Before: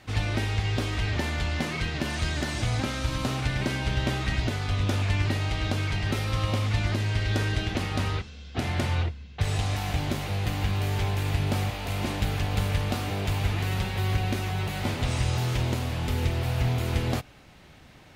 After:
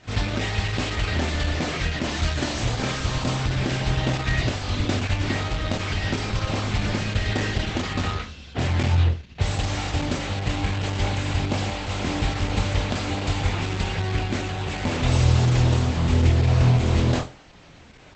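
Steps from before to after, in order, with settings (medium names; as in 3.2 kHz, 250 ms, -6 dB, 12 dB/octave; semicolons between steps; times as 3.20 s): on a send: flutter echo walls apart 4.1 m, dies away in 0.3 s; on the sum: trim +3 dB; Opus 10 kbps 48 kHz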